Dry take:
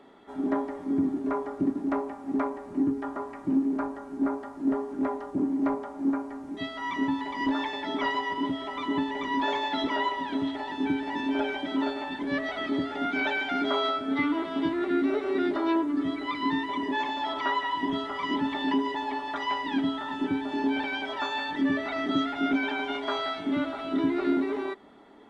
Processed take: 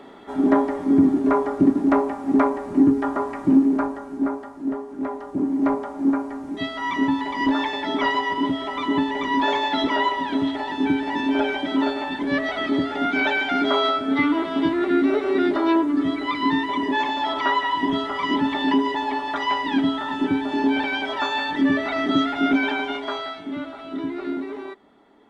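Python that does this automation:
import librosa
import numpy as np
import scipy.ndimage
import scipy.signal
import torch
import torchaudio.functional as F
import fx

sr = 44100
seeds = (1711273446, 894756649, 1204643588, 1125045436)

y = fx.gain(x, sr, db=fx.line((3.48, 10.0), (4.85, -1.0), (5.72, 6.5), (22.7, 6.5), (23.45, -2.5)))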